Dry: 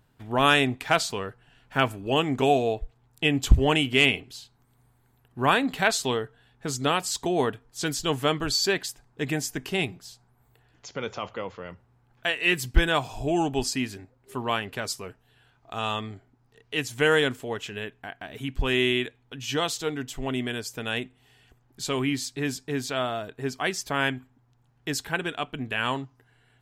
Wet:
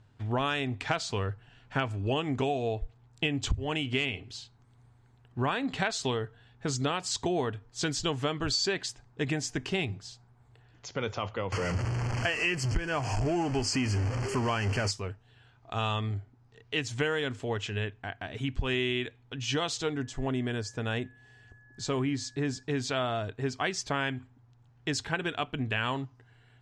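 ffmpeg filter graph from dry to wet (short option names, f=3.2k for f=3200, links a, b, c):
-filter_complex "[0:a]asettb=1/sr,asplit=3[a][b][c];[a]atrim=end=11.524[d];[b]atrim=start=11.52:end=14.91,asetpts=PTS-STARTPTS,afade=t=in:d=0.004:c=qsin,afade=t=out:st=3.386:d=0.004:c=qsin,aeval=exprs='val(0)+0.5*0.0422*sgn(val(0))':c=same,asuperstop=centerf=3700:order=8:qfactor=3.3[e];[c]atrim=start=14.906[f];[d][e]acrossfade=d=0.004:c1=hsin:c2=qsin[g];[g][f]acrossfade=d=0.004:c1=qsin:c2=hsin,asettb=1/sr,asplit=3[h][i][j];[h]atrim=end=19.934[k];[i]atrim=start=19.93:end=22.63,asetpts=PTS-STARTPTS,afade=t=in:d=0.004:c=qsin,afade=t=out:st=2.696:d=0.004:c=qsin,acrossover=split=9100[l][m];[m]acompressor=threshold=-58dB:ratio=4:attack=1:release=60[n];[l][n]amix=inputs=2:normalize=0,equalizer=f=2.9k:w=1:g=-7,aeval=exprs='val(0)+0.00141*sin(2*PI*1700*n/s)':c=same[o];[j]atrim=start=22.626[p];[k][o]acrossfade=d=0.004:c1=hsin:c2=qsin[q];[q][p]acrossfade=d=0.004:c1=qsin:c2=hsin,lowpass=f=7.4k:w=0.5412,lowpass=f=7.4k:w=1.3066,equalizer=f=100:t=o:w=0.39:g=13,acompressor=threshold=-25dB:ratio=16"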